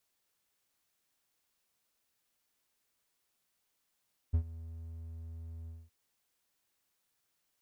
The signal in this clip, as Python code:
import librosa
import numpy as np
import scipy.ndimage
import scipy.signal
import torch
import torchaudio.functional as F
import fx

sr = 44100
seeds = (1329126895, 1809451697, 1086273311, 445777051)

y = fx.adsr_tone(sr, wave='triangle', hz=81.9, attack_ms=16.0, decay_ms=81.0, sustain_db=-19.0, held_s=1.35, release_ms=217.0, level_db=-21.0)